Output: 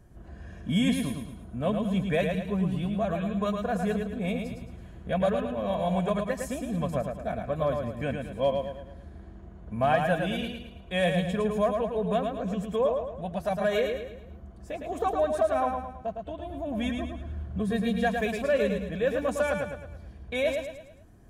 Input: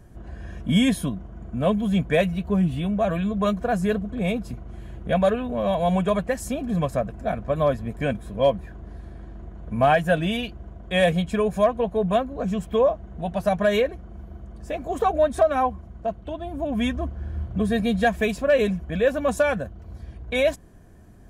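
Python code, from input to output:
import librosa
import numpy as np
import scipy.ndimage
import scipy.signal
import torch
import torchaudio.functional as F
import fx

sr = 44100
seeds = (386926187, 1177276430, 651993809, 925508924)

y = fx.echo_feedback(x, sr, ms=109, feedback_pct=43, wet_db=-5.0)
y = F.gain(torch.from_numpy(y), -6.5).numpy()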